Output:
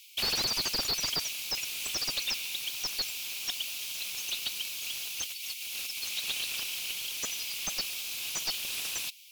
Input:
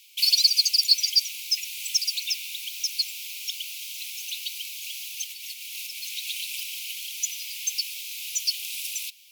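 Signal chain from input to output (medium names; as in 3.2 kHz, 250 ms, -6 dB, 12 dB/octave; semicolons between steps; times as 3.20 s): slew-rate limiter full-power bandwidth 180 Hz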